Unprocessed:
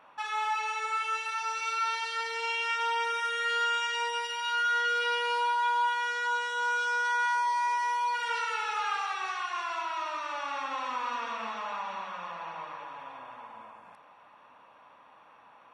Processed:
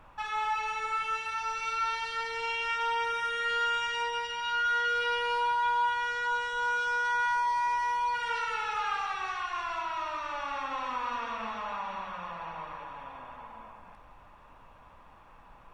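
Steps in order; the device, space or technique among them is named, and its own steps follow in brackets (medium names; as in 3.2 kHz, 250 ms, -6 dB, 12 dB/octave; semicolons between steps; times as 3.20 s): car interior (peaking EQ 160 Hz +6 dB 0.9 oct; treble shelf 4.9 kHz -7 dB; brown noise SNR 25 dB); 4.03–4.66 s: low-pass 8 kHz 12 dB/octave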